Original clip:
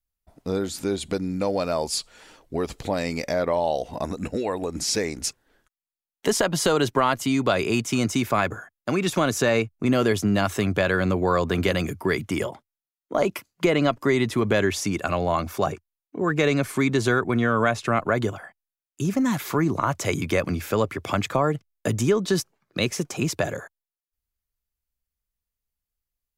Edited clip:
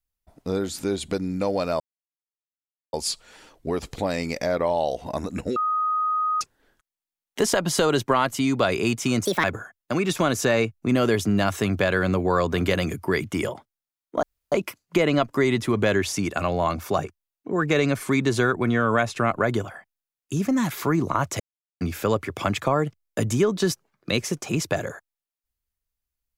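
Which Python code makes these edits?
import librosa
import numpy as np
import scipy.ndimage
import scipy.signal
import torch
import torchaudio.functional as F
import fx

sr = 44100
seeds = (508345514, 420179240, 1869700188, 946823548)

y = fx.edit(x, sr, fx.insert_silence(at_s=1.8, length_s=1.13),
    fx.bleep(start_s=4.43, length_s=0.85, hz=1250.0, db=-20.5),
    fx.speed_span(start_s=8.12, length_s=0.29, speed=1.54),
    fx.insert_room_tone(at_s=13.2, length_s=0.29),
    fx.silence(start_s=20.08, length_s=0.41), tone=tone)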